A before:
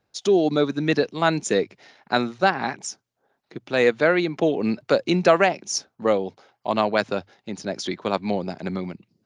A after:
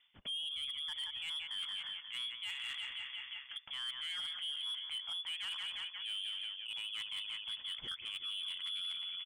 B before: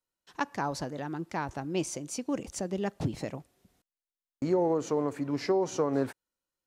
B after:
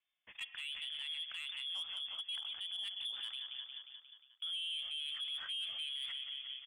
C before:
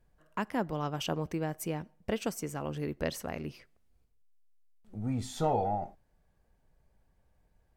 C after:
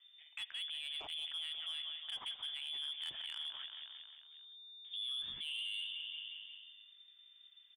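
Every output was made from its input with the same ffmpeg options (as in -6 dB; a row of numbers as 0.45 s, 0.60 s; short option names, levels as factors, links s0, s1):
-filter_complex "[0:a]asplit=2[s0][s1];[s1]aecho=0:1:178|356|534|712|890|1068:0.2|0.12|0.0718|0.0431|0.0259|0.0155[s2];[s0][s2]amix=inputs=2:normalize=0,lowpass=f=3100:t=q:w=0.5098,lowpass=f=3100:t=q:w=0.6013,lowpass=f=3100:t=q:w=0.9,lowpass=f=3100:t=q:w=2.563,afreqshift=-3600,areverse,acompressor=threshold=0.0316:ratio=10,areverse,asoftclip=type=tanh:threshold=0.0376,alimiter=level_in=6.31:limit=0.0631:level=0:latency=1:release=116,volume=0.158,equalizer=f=470:t=o:w=1.9:g=-9,volume=1.78"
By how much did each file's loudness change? -16.5 LU, -8.0 LU, -6.5 LU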